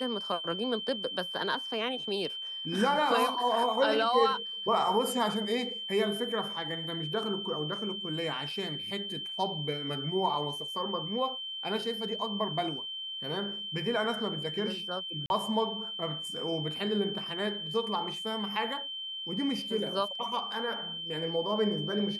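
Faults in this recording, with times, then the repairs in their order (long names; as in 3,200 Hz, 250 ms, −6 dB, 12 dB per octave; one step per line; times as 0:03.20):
whistle 3,100 Hz −36 dBFS
0:15.26–0:15.30: drop-out 41 ms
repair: notch filter 3,100 Hz, Q 30
repair the gap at 0:15.26, 41 ms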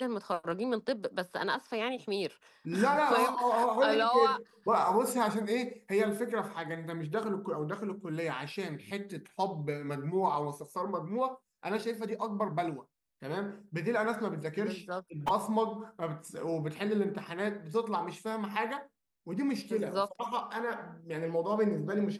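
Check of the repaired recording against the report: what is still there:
none of them is left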